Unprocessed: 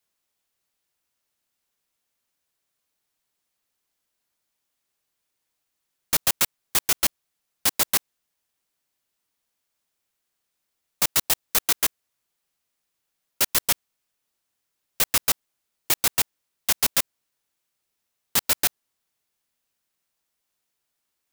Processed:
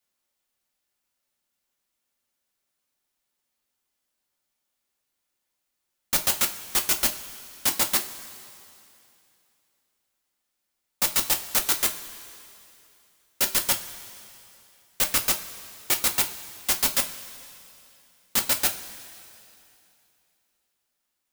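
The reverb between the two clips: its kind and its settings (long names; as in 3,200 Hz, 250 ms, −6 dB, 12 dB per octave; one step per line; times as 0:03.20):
coupled-rooms reverb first 0.23 s, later 2.8 s, from −18 dB, DRR 3 dB
level −2.5 dB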